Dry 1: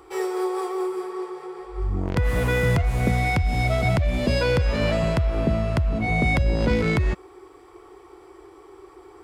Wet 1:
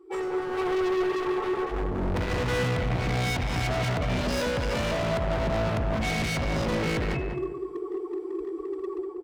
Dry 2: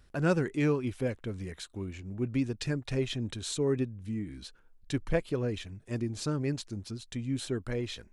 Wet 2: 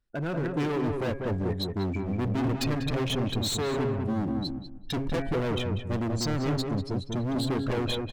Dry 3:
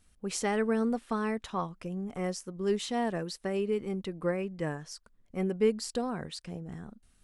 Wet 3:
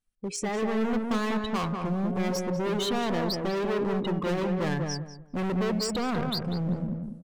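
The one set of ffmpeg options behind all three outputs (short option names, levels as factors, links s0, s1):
-filter_complex "[0:a]afftdn=nr=24:nf=-37,equalizer=f=63:t=o:w=0.85:g=-9,bandreject=f=136.5:t=h:w=4,bandreject=f=273:t=h:w=4,bandreject=f=409.5:t=h:w=4,bandreject=f=546:t=h:w=4,bandreject=f=682.5:t=h:w=4,bandreject=f=819:t=h:w=4,bandreject=f=955.5:t=h:w=4,bandreject=f=1092:t=h:w=4,bandreject=f=1228.5:t=h:w=4,bandreject=f=1365:t=h:w=4,bandreject=f=1501.5:t=h:w=4,bandreject=f=1638:t=h:w=4,bandreject=f=1774.5:t=h:w=4,bandreject=f=1911:t=h:w=4,bandreject=f=2047.5:t=h:w=4,bandreject=f=2184:t=h:w=4,bandreject=f=2320.5:t=h:w=4,bandreject=f=2457:t=h:w=4,bandreject=f=2593.5:t=h:w=4,bandreject=f=2730:t=h:w=4,bandreject=f=2866.5:t=h:w=4,asplit=2[s0][s1];[s1]acompressor=threshold=0.0158:ratio=20,volume=0.75[s2];[s0][s2]amix=inputs=2:normalize=0,alimiter=limit=0.0841:level=0:latency=1:release=16,dynaudnorm=f=450:g=3:m=3.98,asoftclip=type=hard:threshold=0.0473,asplit=2[s3][s4];[s4]adelay=194,lowpass=f=1300:p=1,volume=0.708,asplit=2[s5][s6];[s6]adelay=194,lowpass=f=1300:p=1,volume=0.26,asplit=2[s7][s8];[s8]adelay=194,lowpass=f=1300:p=1,volume=0.26,asplit=2[s9][s10];[s10]adelay=194,lowpass=f=1300:p=1,volume=0.26[s11];[s3][s5][s7][s9][s11]amix=inputs=5:normalize=0,adynamicequalizer=threshold=0.00501:dfrequency=7700:dqfactor=0.7:tfrequency=7700:tqfactor=0.7:attack=5:release=100:ratio=0.375:range=1.5:mode=cutabove:tftype=highshelf,volume=0.891"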